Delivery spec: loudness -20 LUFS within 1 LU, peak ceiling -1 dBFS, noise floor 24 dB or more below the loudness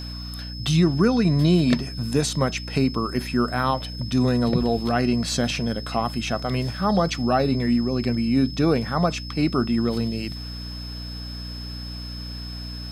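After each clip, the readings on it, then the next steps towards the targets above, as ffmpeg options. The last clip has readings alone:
hum 60 Hz; highest harmonic 300 Hz; hum level -32 dBFS; steady tone 5.2 kHz; tone level -37 dBFS; loudness -23.0 LUFS; peak level -6.5 dBFS; loudness target -20.0 LUFS
-> -af "bandreject=f=60:t=h:w=4,bandreject=f=120:t=h:w=4,bandreject=f=180:t=h:w=4,bandreject=f=240:t=h:w=4,bandreject=f=300:t=h:w=4"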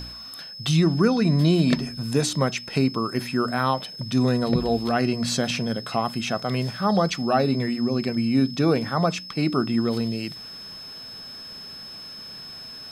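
hum not found; steady tone 5.2 kHz; tone level -37 dBFS
-> -af "bandreject=f=5200:w=30"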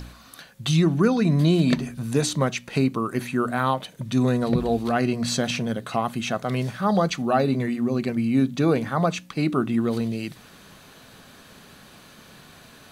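steady tone not found; loudness -23.5 LUFS; peak level -8.0 dBFS; loudness target -20.0 LUFS
-> -af "volume=1.5"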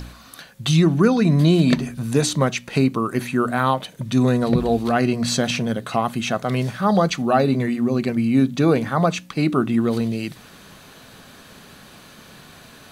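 loudness -20.0 LUFS; peak level -4.5 dBFS; noise floor -46 dBFS

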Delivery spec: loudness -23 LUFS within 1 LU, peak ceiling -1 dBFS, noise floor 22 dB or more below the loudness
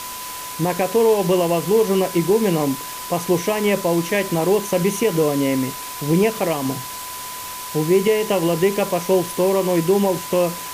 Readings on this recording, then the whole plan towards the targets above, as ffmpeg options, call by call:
steady tone 1 kHz; tone level -33 dBFS; noise floor -31 dBFS; noise floor target -42 dBFS; loudness -19.5 LUFS; peak level -6.0 dBFS; loudness target -23.0 LUFS
-> -af "bandreject=f=1000:w=30"
-af "afftdn=nr=11:nf=-31"
-af "volume=0.668"

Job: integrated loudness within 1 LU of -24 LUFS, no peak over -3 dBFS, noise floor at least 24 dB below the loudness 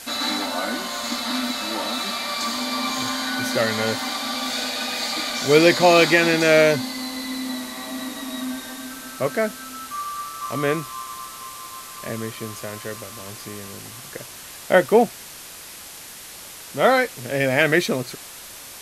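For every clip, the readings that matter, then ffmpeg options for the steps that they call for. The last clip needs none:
noise floor -40 dBFS; noise floor target -46 dBFS; loudness -21.5 LUFS; peak level -1.0 dBFS; loudness target -24.0 LUFS
-> -af "afftdn=nr=6:nf=-40"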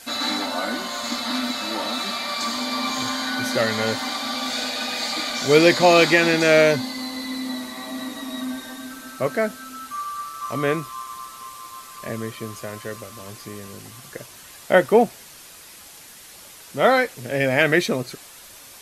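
noise floor -44 dBFS; noise floor target -46 dBFS
-> -af "afftdn=nr=6:nf=-44"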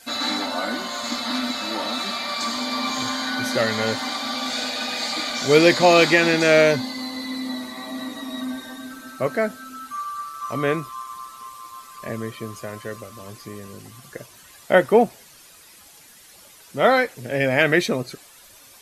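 noise floor -49 dBFS; loudness -21.5 LUFS; peak level -1.5 dBFS; loudness target -24.0 LUFS
-> -af "volume=0.75"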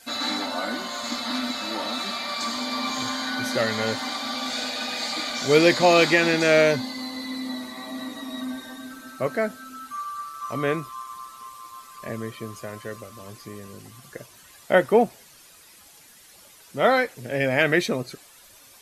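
loudness -24.0 LUFS; peak level -4.0 dBFS; noise floor -51 dBFS

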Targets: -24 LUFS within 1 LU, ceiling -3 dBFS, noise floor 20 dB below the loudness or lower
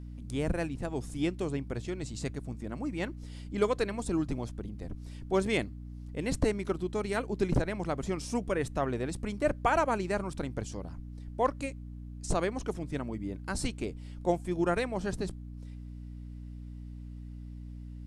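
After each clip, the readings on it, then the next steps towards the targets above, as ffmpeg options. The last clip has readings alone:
hum 60 Hz; highest harmonic 300 Hz; hum level -40 dBFS; loudness -33.0 LUFS; peak level -14.0 dBFS; loudness target -24.0 LUFS
-> -af "bandreject=f=60:t=h:w=6,bandreject=f=120:t=h:w=6,bandreject=f=180:t=h:w=6,bandreject=f=240:t=h:w=6,bandreject=f=300:t=h:w=6"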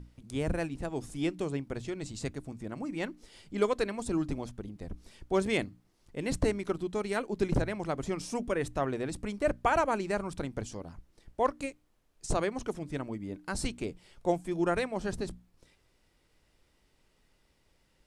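hum not found; loudness -33.5 LUFS; peak level -14.5 dBFS; loudness target -24.0 LUFS
-> -af "volume=2.99"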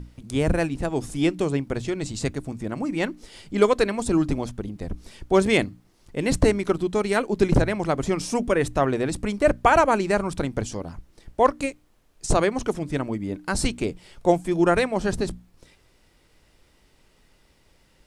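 loudness -24.0 LUFS; peak level -5.0 dBFS; noise floor -61 dBFS

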